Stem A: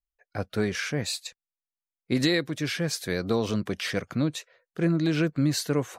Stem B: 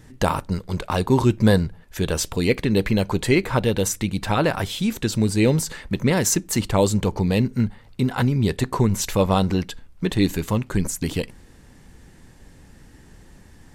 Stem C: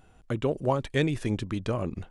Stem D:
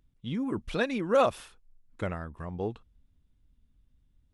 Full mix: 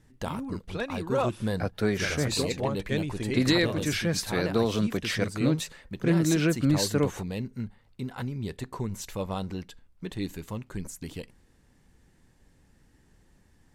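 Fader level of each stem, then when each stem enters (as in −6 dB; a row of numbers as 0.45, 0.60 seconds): +0.5, −13.5, −4.5, −4.5 decibels; 1.25, 0.00, 1.95, 0.00 seconds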